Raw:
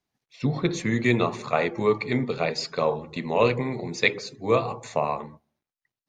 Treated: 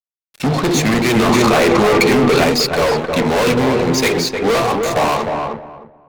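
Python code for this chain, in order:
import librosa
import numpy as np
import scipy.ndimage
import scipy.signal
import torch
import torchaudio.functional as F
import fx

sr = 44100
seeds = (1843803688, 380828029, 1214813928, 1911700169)

y = scipy.signal.sosfilt(scipy.signal.butter(2, 170.0, 'highpass', fs=sr, output='sos'), x)
y = fx.fuzz(y, sr, gain_db=34.0, gate_db=-43.0)
y = fx.echo_filtered(y, sr, ms=307, feedback_pct=23, hz=1400.0, wet_db=-3.0)
y = fx.env_flatten(y, sr, amount_pct=100, at=(1.29, 2.44))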